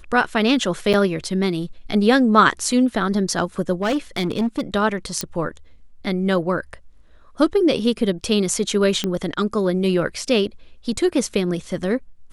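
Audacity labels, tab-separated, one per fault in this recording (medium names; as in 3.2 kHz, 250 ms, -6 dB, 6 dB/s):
0.930000	0.940000	dropout 7.3 ms
3.820000	4.610000	clipped -16.5 dBFS
5.210000	5.210000	pop -7 dBFS
9.040000	9.040000	pop -9 dBFS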